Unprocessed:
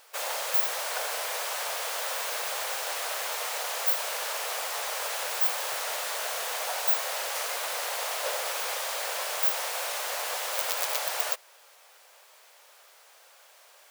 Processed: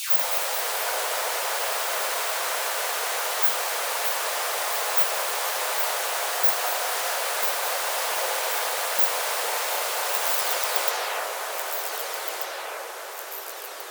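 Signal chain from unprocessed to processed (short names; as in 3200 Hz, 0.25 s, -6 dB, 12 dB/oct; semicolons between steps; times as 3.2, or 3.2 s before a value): spectral delay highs early, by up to 0.444 s; echoes that change speed 0.201 s, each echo -2 st, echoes 3, each echo -6 dB; band-limited delay 0.248 s, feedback 81%, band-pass 990 Hz, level -6.5 dB; gain +4 dB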